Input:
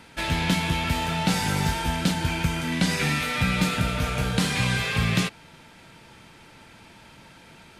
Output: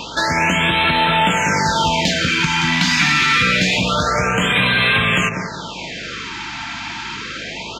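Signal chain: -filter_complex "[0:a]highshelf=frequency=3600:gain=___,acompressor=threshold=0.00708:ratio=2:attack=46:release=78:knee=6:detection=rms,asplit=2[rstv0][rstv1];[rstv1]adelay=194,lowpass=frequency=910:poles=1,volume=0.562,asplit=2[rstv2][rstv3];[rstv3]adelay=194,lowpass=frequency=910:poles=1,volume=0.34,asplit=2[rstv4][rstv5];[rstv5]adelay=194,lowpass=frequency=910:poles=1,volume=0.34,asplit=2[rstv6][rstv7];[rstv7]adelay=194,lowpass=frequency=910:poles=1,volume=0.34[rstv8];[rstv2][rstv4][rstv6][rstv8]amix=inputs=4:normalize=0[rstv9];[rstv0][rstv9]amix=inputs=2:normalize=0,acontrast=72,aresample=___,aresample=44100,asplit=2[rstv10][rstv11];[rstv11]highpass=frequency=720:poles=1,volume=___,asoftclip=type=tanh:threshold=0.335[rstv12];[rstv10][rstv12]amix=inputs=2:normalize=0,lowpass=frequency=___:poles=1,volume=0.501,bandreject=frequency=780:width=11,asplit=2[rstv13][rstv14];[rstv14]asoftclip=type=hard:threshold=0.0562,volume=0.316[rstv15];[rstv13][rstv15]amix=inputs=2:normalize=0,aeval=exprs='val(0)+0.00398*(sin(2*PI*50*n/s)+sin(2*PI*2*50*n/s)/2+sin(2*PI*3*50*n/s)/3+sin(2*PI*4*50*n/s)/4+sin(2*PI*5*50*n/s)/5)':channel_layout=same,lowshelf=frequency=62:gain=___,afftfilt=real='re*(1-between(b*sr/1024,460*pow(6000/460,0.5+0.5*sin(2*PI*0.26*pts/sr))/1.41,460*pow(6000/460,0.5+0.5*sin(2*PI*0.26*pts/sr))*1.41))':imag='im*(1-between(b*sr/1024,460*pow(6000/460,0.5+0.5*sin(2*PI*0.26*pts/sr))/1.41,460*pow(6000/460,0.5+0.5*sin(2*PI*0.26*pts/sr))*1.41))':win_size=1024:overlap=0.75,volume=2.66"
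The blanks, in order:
9, 16000, 3.55, 2500, -11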